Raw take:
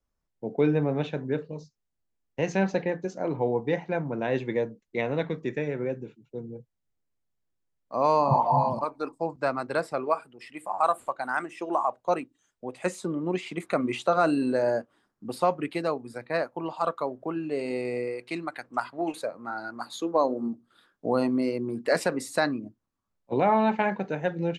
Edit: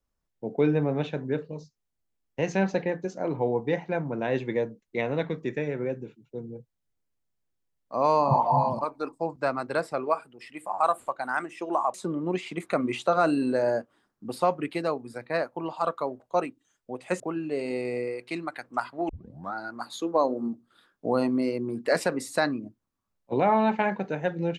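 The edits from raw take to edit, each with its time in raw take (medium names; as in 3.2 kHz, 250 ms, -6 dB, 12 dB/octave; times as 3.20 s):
11.94–12.94 s: move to 17.20 s
19.09 s: tape start 0.45 s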